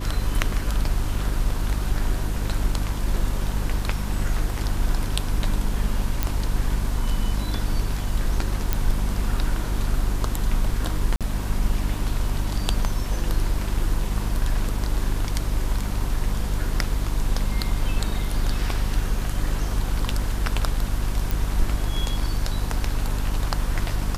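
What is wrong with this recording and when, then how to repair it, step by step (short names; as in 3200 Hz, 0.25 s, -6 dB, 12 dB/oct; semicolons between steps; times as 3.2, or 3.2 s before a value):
hum 50 Hz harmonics 6 -27 dBFS
6.23 pop -7 dBFS
8.73 pop
11.16–11.21 gap 47 ms
21.31 pop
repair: de-click; de-hum 50 Hz, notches 6; interpolate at 11.16, 47 ms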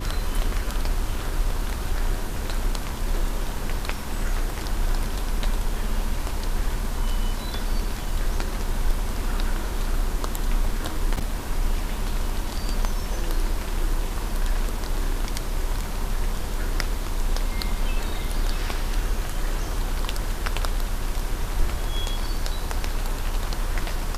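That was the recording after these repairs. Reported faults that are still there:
none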